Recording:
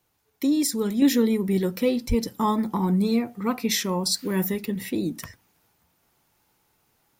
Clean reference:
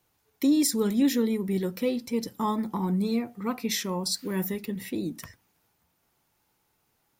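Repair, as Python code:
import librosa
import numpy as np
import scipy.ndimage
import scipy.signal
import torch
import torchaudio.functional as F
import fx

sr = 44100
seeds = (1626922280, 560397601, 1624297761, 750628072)

y = fx.highpass(x, sr, hz=140.0, slope=24, at=(2.08, 2.2), fade=0.02)
y = fx.fix_level(y, sr, at_s=1.02, step_db=-4.5)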